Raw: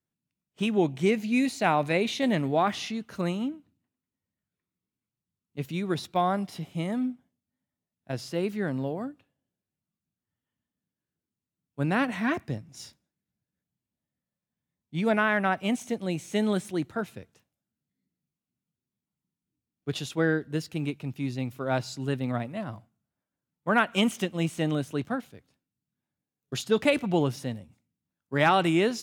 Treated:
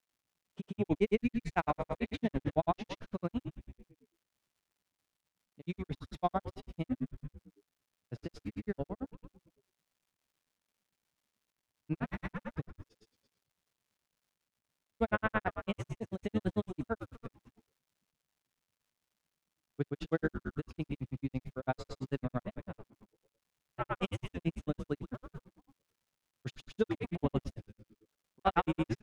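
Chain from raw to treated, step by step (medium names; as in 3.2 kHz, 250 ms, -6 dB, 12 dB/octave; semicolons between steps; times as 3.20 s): low-pass 1.9 kHz 6 dB/octave; on a send: frequency-shifting echo 89 ms, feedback 54%, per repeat -110 Hz, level -8 dB; on the sum: granulator 66 ms, grains 9 per s; crackle 280 per s -65 dBFS; trim -2.5 dB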